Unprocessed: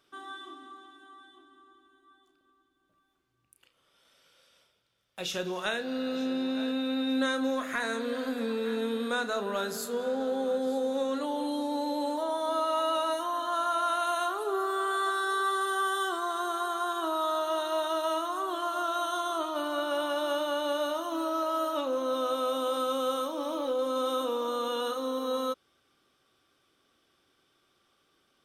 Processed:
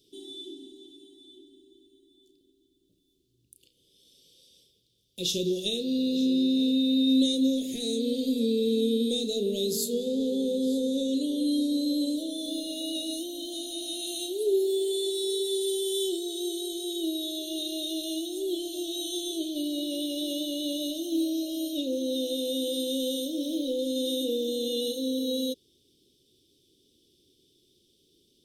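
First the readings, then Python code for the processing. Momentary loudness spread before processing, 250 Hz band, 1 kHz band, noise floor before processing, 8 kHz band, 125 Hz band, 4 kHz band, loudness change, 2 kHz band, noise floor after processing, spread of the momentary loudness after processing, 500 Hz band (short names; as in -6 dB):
4 LU, +7.0 dB, under -25 dB, -72 dBFS, +7.0 dB, n/a, +6.5 dB, +2.0 dB, under -15 dB, -68 dBFS, 8 LU, 0.0 dB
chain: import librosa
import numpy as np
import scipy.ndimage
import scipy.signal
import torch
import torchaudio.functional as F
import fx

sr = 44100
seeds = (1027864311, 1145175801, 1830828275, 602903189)

y = scipy.signal.sosfilt(scipy.signal.ellip(3, 1.0, 60, [420.0, 3500.0], 'bandstop', fs=sr, output='sos'), x)
y = y * librosa.db_to_amplitude(8.0)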